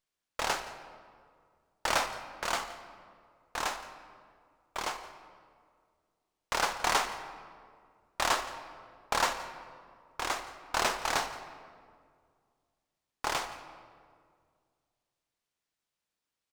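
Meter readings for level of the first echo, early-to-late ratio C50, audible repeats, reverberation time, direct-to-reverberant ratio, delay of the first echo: −19.0 dB, 9.5 dB, 1, 2.1 s, 8.0 dB, 171 ms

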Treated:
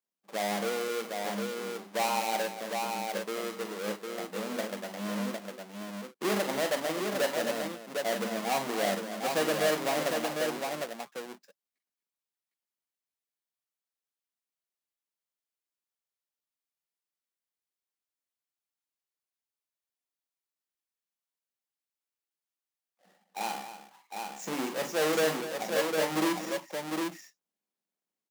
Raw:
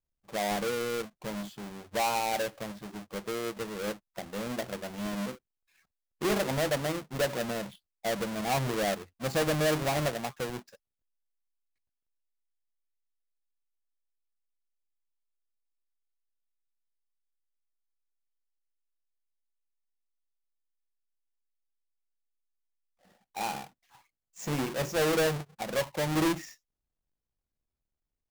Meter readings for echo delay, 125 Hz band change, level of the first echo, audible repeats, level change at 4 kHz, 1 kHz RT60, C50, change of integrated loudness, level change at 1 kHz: 44 ms, −9.0 dB, −8.0 dB, 3, +1.0 dB, no reverb audible, no reverb audible, 0.0 dB, +1.0 dB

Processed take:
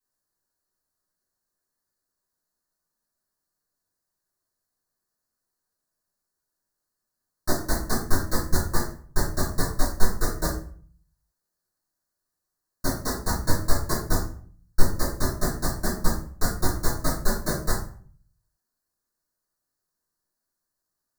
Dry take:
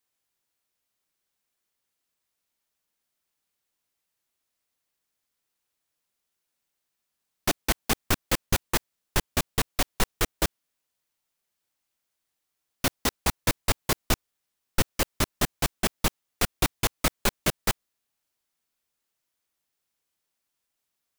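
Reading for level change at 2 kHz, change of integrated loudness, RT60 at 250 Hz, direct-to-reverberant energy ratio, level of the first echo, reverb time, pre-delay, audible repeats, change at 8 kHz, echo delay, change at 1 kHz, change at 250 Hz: −3.0 dB, −0.5 dB, 0.65 s, −9.0 dB, no echo audible, 0.50 s, 3 ms, no echo audible, −1.5 dB, no echo audible, 0.0 dB, +2.5 dB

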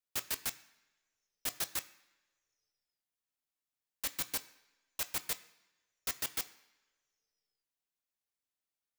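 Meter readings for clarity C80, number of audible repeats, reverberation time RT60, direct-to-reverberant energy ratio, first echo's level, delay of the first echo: 18.5 dB, no echo audible, 1.3 s, 9.5 dB, no echo audible, no echo audible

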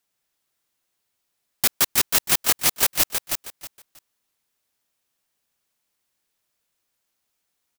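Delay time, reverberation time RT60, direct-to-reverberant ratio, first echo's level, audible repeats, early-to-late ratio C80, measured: 318 ms, no reverb audible, no reverb audible, −6.0 dB, 3, no reverb audible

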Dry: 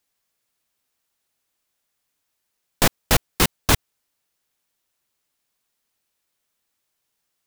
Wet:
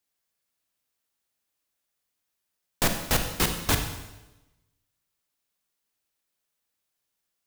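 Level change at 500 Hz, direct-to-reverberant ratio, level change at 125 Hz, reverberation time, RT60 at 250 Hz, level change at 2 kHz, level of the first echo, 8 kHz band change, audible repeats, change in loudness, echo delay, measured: −6.0 dB, 5.0 dB, −5.5 dB, 1.0 s, 1.1 s, −5.5 dB, no echo audible, −5.0 dB, no echo audible, −5.5 dB, no echo audible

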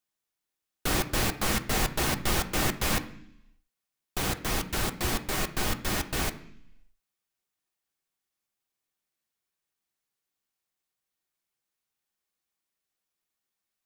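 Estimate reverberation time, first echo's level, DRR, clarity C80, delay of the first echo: 0.70 s, no echo audible, 5.5 dB, 17.5 dB, no echo audible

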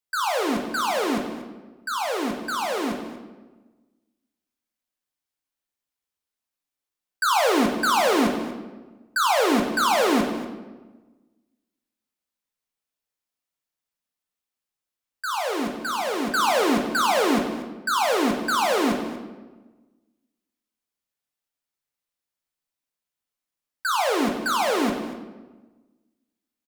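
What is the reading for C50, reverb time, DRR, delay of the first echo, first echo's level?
5.5 dB, 1.2 s, 1.5 dB, 238 ms, −14.5 dB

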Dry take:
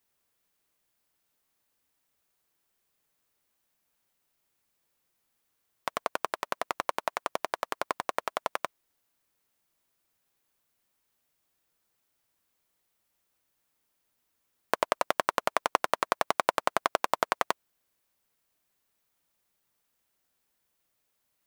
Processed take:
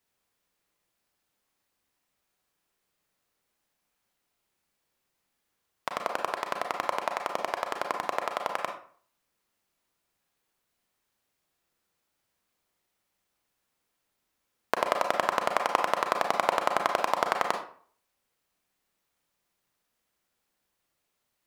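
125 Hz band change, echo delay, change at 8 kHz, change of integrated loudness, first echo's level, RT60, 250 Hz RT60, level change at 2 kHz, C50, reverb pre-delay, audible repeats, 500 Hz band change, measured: +1.5 dB, no echo audible, −1.5 dB, +1.5 dB, no echo audible, 0.50 s, 0.50 s, +1.0 dB, 7.0 dB, 30 ms, no echo audible, +2.0 dB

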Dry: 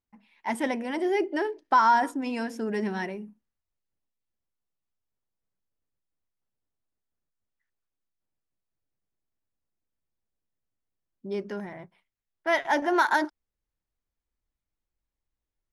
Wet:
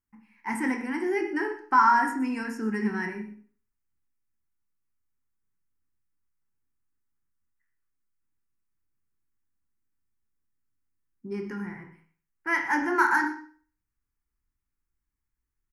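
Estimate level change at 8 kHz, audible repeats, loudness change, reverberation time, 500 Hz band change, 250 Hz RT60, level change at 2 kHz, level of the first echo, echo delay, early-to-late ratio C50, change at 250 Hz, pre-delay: 0.0 dB, 1, +0.5 dB, 0.45 s, −4.5 dB, 0.45 s, +2.5 dB, −16.0 dB, 123 ms, 7.0 dB, +1.5 dB, 21 ms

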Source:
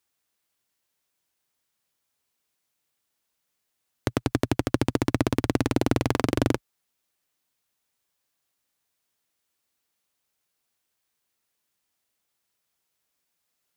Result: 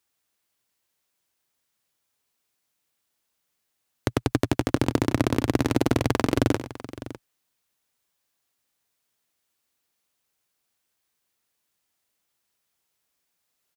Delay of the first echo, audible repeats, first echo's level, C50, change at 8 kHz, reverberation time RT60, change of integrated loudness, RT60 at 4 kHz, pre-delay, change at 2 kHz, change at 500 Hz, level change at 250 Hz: 95 ms, 2, −13.0 dB, no reverb audible, +1.5 dB, no reverb audible, +1.5 dB, no reverb audible, no reverb audible, +1.5 dB, +1.5 dB, +1.5 dB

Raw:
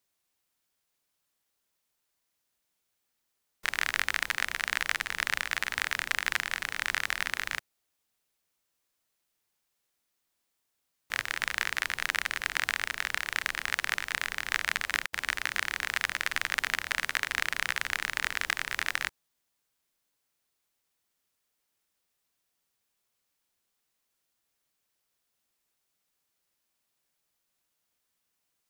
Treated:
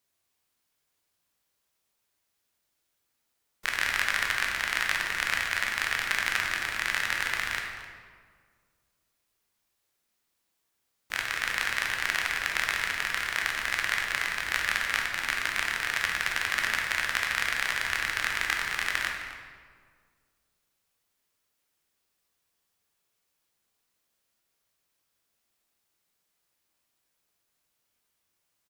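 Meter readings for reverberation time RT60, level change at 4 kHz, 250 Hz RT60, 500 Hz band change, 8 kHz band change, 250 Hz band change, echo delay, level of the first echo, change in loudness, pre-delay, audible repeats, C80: 1.8 s, +2.0 dB, 2.1 s, +3.0 dB, +1.5 dB, +3.0 dB, 260 ms, −15.0 dB, +2.5 dB, 11 ms, 1, 4.5 dB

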